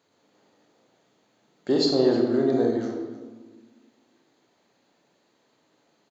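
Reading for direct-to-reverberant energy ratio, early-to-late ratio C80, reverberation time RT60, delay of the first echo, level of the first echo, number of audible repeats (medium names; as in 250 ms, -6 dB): 1.0 dB, 5.0 dB, 1.3 s, 311 ms, -17.5 dB, 1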